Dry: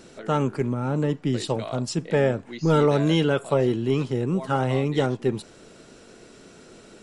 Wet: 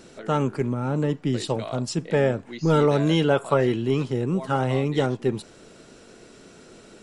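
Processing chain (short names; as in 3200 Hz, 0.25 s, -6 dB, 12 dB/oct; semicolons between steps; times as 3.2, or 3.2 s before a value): 3.28–3.81 bell 650 Hz -> 2900 Hz +8.5 dB 0.77 oct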